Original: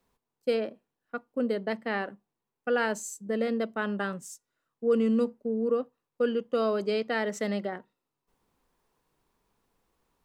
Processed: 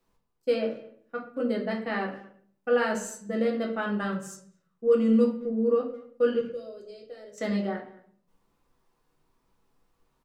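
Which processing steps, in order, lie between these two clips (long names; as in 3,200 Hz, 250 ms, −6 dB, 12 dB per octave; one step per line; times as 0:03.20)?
0:06.41–0:07.38: drawn EQ curve 110 Hz 0 dB, 190 Hz −28 dB, 530 Hz −10 dB, 890 Hz −30 dB, 2,500 Hz −24 dB, 5,600 Hz −11 dB
far-end echo of a speakerphone 220 ms, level −20 dB
convolution reverb RT60 0.50 s, pre-delay 6 ms, DRR −0.5 dB
level −2.5 dB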